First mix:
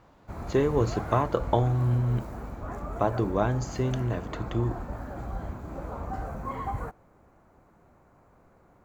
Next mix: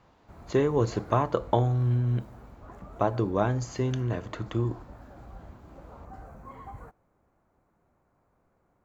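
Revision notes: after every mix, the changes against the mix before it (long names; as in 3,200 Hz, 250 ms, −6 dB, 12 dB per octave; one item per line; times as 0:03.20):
background −11.0 dB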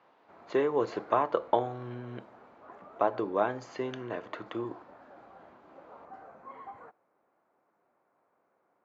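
master: add band-pass filter 380–3,200 Hz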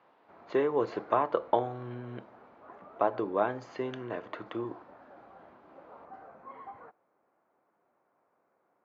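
master: add high-frequency loss of the air 93 metres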